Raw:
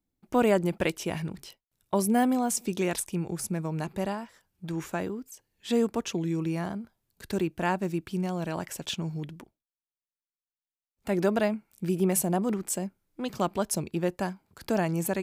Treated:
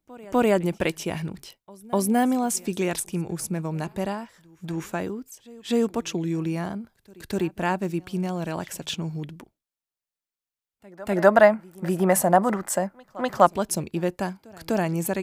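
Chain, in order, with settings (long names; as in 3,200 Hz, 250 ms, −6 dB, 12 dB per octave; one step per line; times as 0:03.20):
gain on a spectral selection 0:11.16–0:13.46, 510–2,100 Hz +11 dB
echo ahead of the sound 249 ms −23 dB
level +2.5 dB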